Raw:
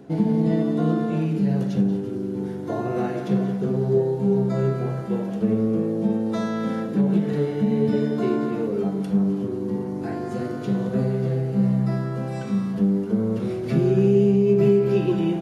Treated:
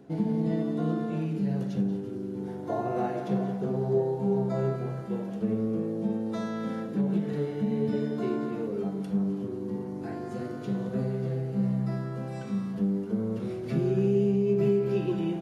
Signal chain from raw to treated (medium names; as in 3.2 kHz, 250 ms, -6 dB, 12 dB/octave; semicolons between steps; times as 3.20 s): 2.47–4.76 s: peaking EQ 760 Hz +7.5 dB 0.97 oct; trim -7 dB